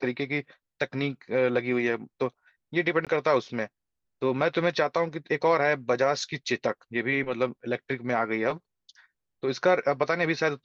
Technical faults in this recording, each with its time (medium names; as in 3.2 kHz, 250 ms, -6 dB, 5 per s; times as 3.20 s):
3.05–3.07 s: dropout 17 ms